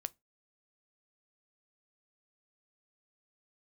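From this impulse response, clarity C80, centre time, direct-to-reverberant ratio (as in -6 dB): 39.5 dB, 1 ms, 14.5 dB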